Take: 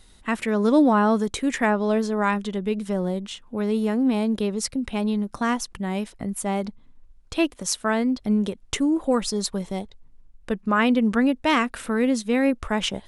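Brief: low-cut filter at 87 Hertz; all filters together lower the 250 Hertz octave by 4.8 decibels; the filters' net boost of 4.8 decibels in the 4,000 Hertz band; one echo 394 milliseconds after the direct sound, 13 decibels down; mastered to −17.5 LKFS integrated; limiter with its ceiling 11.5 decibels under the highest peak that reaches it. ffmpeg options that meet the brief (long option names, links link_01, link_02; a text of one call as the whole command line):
ffmpeg -i in.wav -af "highpass=87,equalizer=frequency=250:width_type=o:gain=-5.5,equalizer=frequency=4000:width_type=o:gain=6.5,alimiter=limit=-18dB:level=0:latency=1,aecho=1:1:394:0.224,volume=10.5dB" out.wav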